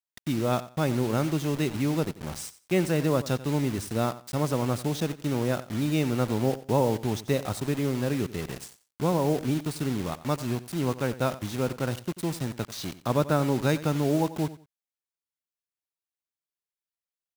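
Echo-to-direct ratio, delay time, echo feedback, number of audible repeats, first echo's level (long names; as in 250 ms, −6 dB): −16.0 dB, 90 ms, 22%, 2, −16.0 dB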